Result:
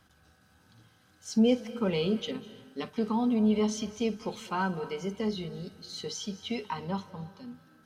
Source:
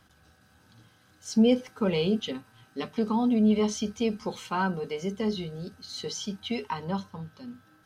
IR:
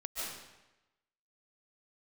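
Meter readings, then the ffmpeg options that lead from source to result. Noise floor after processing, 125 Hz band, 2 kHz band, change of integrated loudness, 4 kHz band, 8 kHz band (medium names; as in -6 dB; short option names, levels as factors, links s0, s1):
-64 dBFS, -2.5 dB, -2.5 dB, -2.5 dB, -2.5 dB, -2.5 dB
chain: -filter_complex "[0:a]asplit=2[s0][s1];[1:a]atrim=start_sample=2205,adelay=54[s2];[s1][s2]afir=irnorm=-1:irlink=0,volume=0.158[s3];[s0][s3]amix=inputs=2:normalize=0,volume=0.75"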